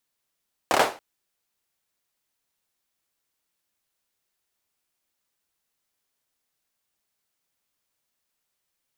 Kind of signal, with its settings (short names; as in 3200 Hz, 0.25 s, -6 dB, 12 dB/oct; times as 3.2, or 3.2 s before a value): hand clap length 0.28 s, apart 28 ms, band 660 Hz, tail 0.32 s